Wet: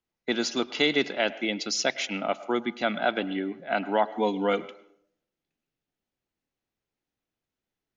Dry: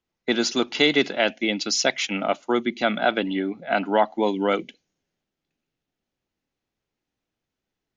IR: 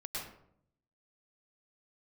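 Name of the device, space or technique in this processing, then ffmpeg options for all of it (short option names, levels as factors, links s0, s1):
filtered reverb send: -filter_complex "[0:a]asplit=2[s0][s1];[s1]highpass=330,lowpass=3800[s2];[1:a]atrim=start_sample=2205[s3];[s2][s3]afir=irnorm=-1:irlink=0,volume=0.168[s4];[s0][s4]amix=inputs=2:normalize=0,asettb=1/sr,asplit=3[s5][s6][s7];[s5]atrim=end=4.104[s8];[s6]atrim=start=4.1:end=4.62,asetpts=PTS-STARTPTS,afade=t=in:d=0.004:c=qsin,afade=t=out:st=0.516:d=0.004:c=qsin,aecho=1:1:4.2:0.57,atrim=end_sample=22932[s9];[s7]atrim=start=4.616[s10];[s8][s9]acrossfade=d=0.004:c1=hsin:c2=qsin[s11];[s11][s10]acrossfade=d=0.004:c1=qsin:c2=hsin,volume=0.562"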